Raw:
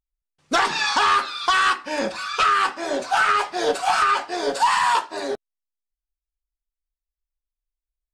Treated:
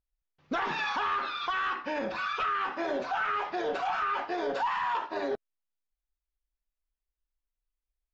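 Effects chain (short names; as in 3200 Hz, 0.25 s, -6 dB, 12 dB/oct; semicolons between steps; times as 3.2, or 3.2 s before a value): dynamic EQ 4500 Hz, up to -7 dB, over -43 dBFS, Q 3.5; downsampling 16000 Hz; air absorption 230 m; limiter -23.5 dBFS, peak gain reduction 11.5 dB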